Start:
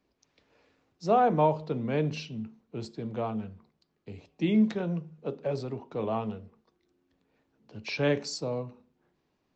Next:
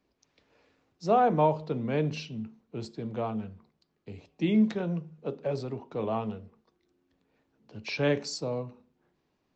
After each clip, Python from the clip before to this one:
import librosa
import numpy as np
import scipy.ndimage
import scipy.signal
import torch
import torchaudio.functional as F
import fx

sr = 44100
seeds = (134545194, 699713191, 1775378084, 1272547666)

y = x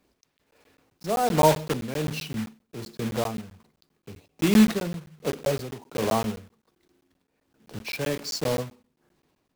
y = fx.block_float(x, sr, bits=3)
y = y * (1.0 - 0.67 / 2.0 + 0.67 / 2.0 * np.cos(2.0 * np.pi * 1.3 * (np.arange(len(y)) / sr)))
y = fx.buffer_crackle(y, sr, first_s=0.38, period_s=0.13, block=512, kind='zero')
y = y * 10.0 ** (6.5 / 20.0)